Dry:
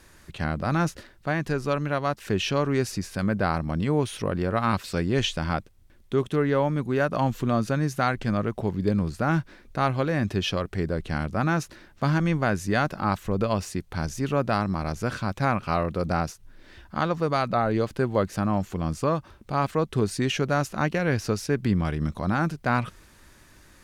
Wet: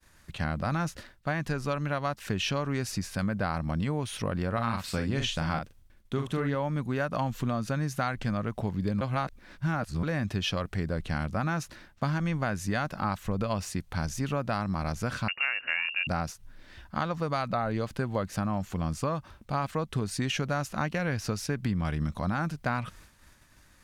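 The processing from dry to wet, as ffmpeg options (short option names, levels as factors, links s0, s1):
-filter_complex "[0:a]asettb=1/sr,asplit=3[s0][s1][s2];[s0]atrim=end=4.534[s3];[s1]atrim=start=4.53:end=6.55,asetpts=PTS-STARTPTS,afade=t=in:d=0.004:c=qsin,afade=t=out:st=2.016:d=0.004:c=qsin,asplit=2[s4][s5];[s5]adelay=43,volume=0.501[s6];[s4][s6]amix=inputs=2:normalize=0,atrim=end_sample=89082[s7];[s2]atrim=start=6.546[s8];[s3][s7]acrossfade=d=0.004:c1=hsin:c2=qsin[s9];[s9][s8]acrossfade=d=0.004:c1=qsin:c2=hsin,asettb=1/sr,asplit=3[s10][s11][s12];[s10]atrim=end=15.284[s13];[s11]atrim=start=15.28:end=16.07,asetpts=PTS-STARTPTS,afade=t=in:d=0.004:c=qsin,afade=t=out:st=0.786:d=0.004:c=qsin,lowpass=f=2500:t=q:w=0.5098,lowpass=f=2500:t=q:w=0.6013,lowpass=f=2500:t=q:w=0.9,lowpass=f=2500:t=q:w=2.563,afreqshift=-2900[s14];[s12]atrim=start=16.066[s15];[s13][s14]acrossfade=d=0.004:c1=hsin:c2=qsin[s16];[s16][s15]acrossfade=d=0.004:c1=qsin:c2=hsin,asplit=3[s17][s18][s19];[s17]atrim=end=9.012[s20];[s18]atrim=start=9.008:end=10.032,asetpts=PTS-STARTPTS,areverse[s21];[s19]atrim=start=10.028[s22];[s20][s21]acrossfade=d=0.004:c1=hsin:c2=hsin[s23];[s23][s22]acrossfade=d=0.004:c1=hsin:c2=hsin,agate=range=0.0224:threshold=0.00447:ratio=3:detection=peak,equalizer=f=380:w=2:g=-7,acompressor=threshold=0.0562:ratio=6"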